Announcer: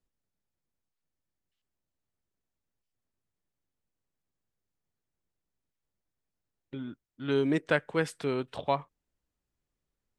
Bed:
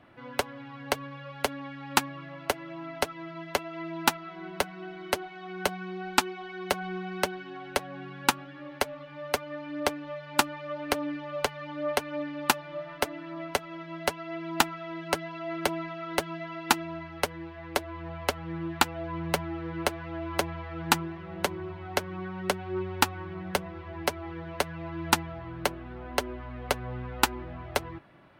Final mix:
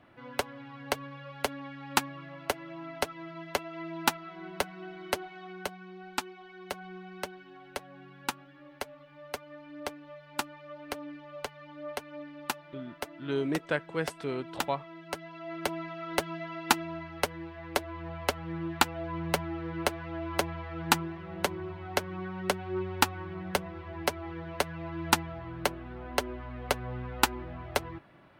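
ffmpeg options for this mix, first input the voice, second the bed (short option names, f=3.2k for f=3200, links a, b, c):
-filter_complex "[0:a]adelay=6000,volume=-3.5dB[a];[1:a]volume=6dB,afade=t=out:st=5.38:d=0.33:silence=0.446684,afade=t=in:st=15.07:d=1.12:silence=0.375837[b];[a][b]amix=inputs=2:normalize=0"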